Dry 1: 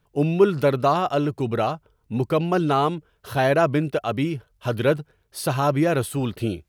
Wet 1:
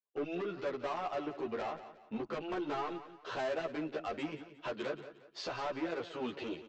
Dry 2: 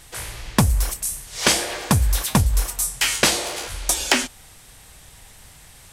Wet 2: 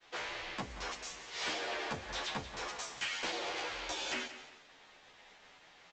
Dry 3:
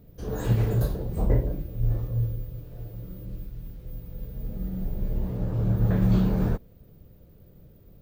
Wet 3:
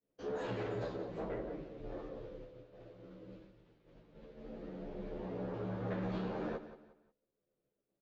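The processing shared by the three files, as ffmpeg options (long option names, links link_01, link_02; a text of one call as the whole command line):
ffmpeg -i in.wav -filter_complex "[0:a]acrossover=split=250 4300:gain=0.0794 1 0.126[link_01][link_02][link_03];[link_01][link_02][link_03]amix=inputs=3:normalize=0,agate=range=-33dB:threshold=-47dB:ratio=3:detection=peak,equalizer=frequency=62:width_type=o:width=1.9:gain=-4.5,acompressor=threshold=-33dB:ratio=2.5,aresample=16000,asoftclip=type=tanh:threshold=-32dB,aresample=44100,aecho=1:1:178|356|534:0.224|0.0739|0.0244,asplit=2[link_04][link_05];[link_05]adelay=11.4,afreqshift=-0.41[link_06];[link_04][link_06]amix=inputs=2:normalize=1,volume=2.5dB" out.wav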